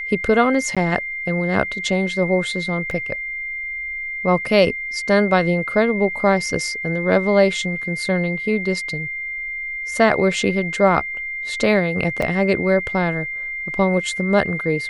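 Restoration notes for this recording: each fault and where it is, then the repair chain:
whine 2.1 kHz -25 dBFS
0.75–0.77 s: dropout 16 ms
2.91 s: dropout 2.7 ms
12.22 s: dropout 4.5 ms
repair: band-stop 2.1 kHz, Q 30; interpolate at 0.75 s, 16 ms; interpolate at 2.91 s, 2.7 ms; interpolate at 12.22 s, 4.5 ms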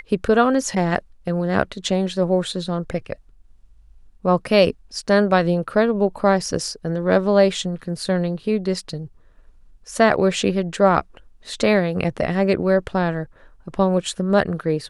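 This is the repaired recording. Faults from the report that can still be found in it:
nothing left

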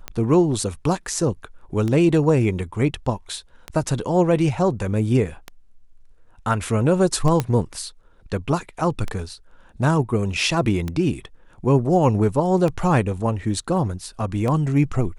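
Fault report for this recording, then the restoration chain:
tick 33 1/3 rpm -13 dBFS
7.40 s: pop -8 dBFS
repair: de-click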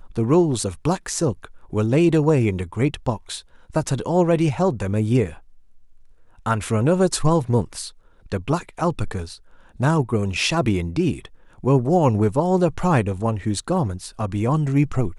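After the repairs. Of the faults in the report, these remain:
nothing left

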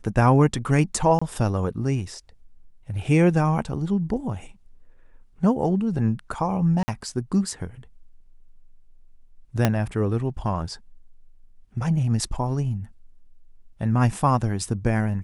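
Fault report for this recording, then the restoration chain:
1.19–1.22 s: dropout 25 ms
6.83–6.88 s: dropout 50 ms
9.65 s: pop -5 dBFS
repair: de-click; interpolate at 1.19 s, 25 ms; interpolate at 6.83 s, 50 ms

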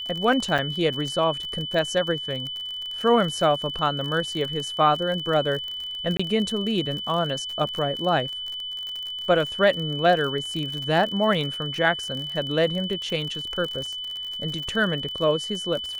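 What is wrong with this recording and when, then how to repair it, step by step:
crackle 42 per s -29 dBFS
whine 3 kHz -30 dBFS
0.58–0.59 s: dropout 6.9 ms
6.17–6.20 s: dropout 25 ms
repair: de-click; band-stop 3 kHz, Q 30; interpolate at 0.58 s, 6.9 ms; interpolate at 6.17 s, 25 ms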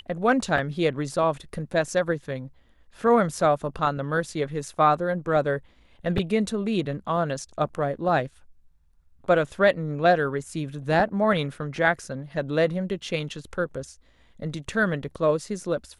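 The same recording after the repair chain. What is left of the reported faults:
nothing left

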